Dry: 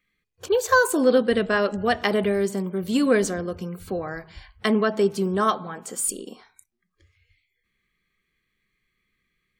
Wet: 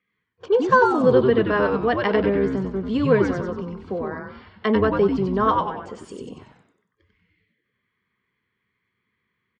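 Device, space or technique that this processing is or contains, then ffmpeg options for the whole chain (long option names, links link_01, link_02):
frequency-shifting delay pedal into a guitar cabinet: -filter_complex "[0:a]asplit=6[link_01][link_02][link_03][link_04][link_05][link_06];[link_02]adelay=94,afreqshift=-130,volume=-3dB[link_07];[link_03]adelay=188,afreqshift=-260,volume=-10.5dB[link_08];[link_04]adelay=282,afreqshift=-390,volume=-18.1dB[link_09];[link_05]adelay=376,afreqshift=-520,volume=-25.6dB[link_10];[link_06]adelay=470,afreqshift=-650,volume=-33.1dB[link_11];[link_01][link_07][link_08][link_09][link_10][link_11]amix=inputs=6:normalize=0,highpass=96,equalizer=frequency=200:width_type=q:width=4:gain=3,equalizer=frequency=450:width_type=q:width=4:gain=6,equalizer=frequency=1000:width_type=q:width=4:gain=6,equalizer=frequency=2600:width_type=q:width=4:gain=-3,equalizer=frequency=4000:width_type=q:width=4:gain=-7,lowpass=frequency=4200:width=0.5412,lowpass=frequency=4200:width=1.3066,volume=-2dB"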